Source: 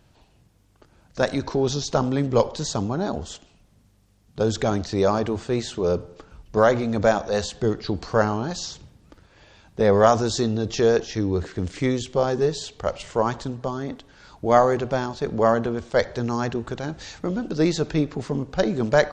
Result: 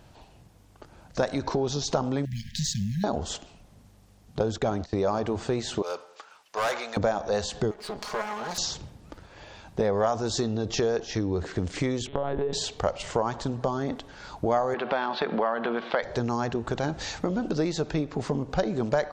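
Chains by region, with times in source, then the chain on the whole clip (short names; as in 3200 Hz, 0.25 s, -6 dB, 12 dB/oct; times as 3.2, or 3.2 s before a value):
2.25–3.04 G.711 law mismatch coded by A + compressor 4:1, threshold -22 dBFS + brick-wall FIR band-stop 230–1600 Hz
4.39–5.08 gate -33 dBFS, range -15 dB + high shelf 4200 Hz -5.5 dB
5.82–6.97 HPF 1100 Hz + overloaded stage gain 29 dB
7.71–8.58 minimum comb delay 4.8 ms + low shelf 300 Hz -12 dB + compressor 2.5:1, threshold -37 dBFS
12.07–12.53 monotone LPC vocoder at 8 kHz 140 Hz + compressor, threshold -24 dBFS
14.74–16.03 Chebyshev band-pass 190–3900 Hz, order 3 + bell 2000 Hz +12 dB 2.7 oct + compressor 2:1, threshold -25 dBFS
whole clip: compressor 6:1, threshold -29 dBFS; bell 770 Hz +4.5 dB 1.1 oct; gain +4 dB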